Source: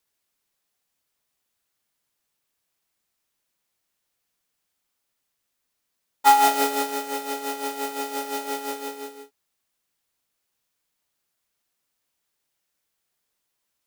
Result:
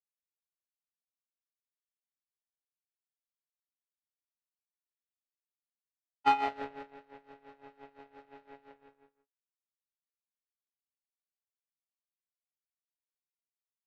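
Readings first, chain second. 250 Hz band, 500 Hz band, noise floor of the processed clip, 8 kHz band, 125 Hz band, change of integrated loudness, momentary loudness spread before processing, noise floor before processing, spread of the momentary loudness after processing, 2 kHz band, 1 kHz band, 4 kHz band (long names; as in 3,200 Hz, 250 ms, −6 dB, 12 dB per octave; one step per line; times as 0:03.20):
−14.0 dB, −16.0 dB, below −85 dBFS, below −30 dB, can't be measured, −7.5 dB, 16 LU, −78 dBFS, 21 LU, −12.0 dB, −12.0 dB, −17.0 dB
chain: linear-phase brick-wall low-pass 3,000 Hz
high-shelf EQ 2,200 Hz −12 dB
power curve on the samples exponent 2
level −3.5 dB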